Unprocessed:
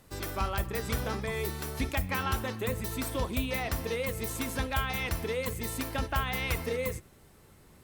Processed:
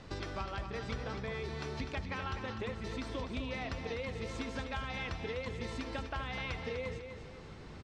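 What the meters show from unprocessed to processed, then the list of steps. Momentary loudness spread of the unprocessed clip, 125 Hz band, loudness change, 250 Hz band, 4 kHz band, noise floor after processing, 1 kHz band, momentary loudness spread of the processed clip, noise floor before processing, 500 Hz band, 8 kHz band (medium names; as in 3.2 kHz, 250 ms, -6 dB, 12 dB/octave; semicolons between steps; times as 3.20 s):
3 LU, -6.5 dB, -7.0 dB, -5.5 dB, -6.5 dB, -49 dBFS, -7.0 dB, 3 LU, -57 dBFS, -6.0 dB, -16.0 dB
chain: low-pass 5.4 kHz 24 dB/octave; compression 4:1, threshold -47 dBFS, peak gain reduction 18.5 dB; on a send: feedback delay 250 ms, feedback 40%, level -8 dB; on the sum: trim +7.5 dB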